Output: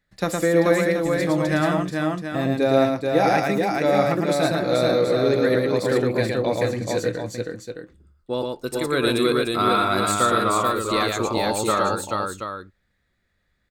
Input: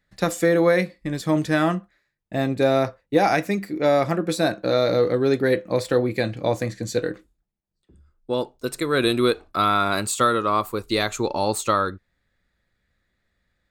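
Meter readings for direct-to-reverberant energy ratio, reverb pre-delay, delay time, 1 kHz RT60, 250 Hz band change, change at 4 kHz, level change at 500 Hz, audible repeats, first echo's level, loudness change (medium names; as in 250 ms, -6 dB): no reverb, no reverb, 112 ms, no reverb, +1.5 dB, +1.0 dB, +1.0 dB, 3, -3.0 dB, +1.0 dB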